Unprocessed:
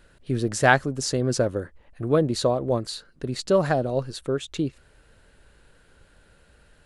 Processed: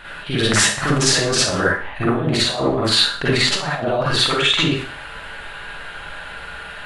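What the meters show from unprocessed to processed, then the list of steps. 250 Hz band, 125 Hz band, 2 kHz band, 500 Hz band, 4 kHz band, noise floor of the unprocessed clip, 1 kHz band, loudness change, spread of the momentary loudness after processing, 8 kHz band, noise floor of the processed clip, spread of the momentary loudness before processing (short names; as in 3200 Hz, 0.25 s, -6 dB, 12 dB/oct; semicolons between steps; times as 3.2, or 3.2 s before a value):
+5.0 dB, +4.5 dB, +8.5 dB, +1.5 dB, +18.0 dB, -58 dBFS, +4.0 dB, +7.5 dB, 17 LU, +13.0 dB, -34 dBFS, 13 LU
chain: band shelf 1600 Hz +14 dB 2.8 oct; negative-ratio compressor -28 dBFS, ratio -1; Schroeder reverb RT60 0.46 s, DRR -7.5 dB; gain -1 dB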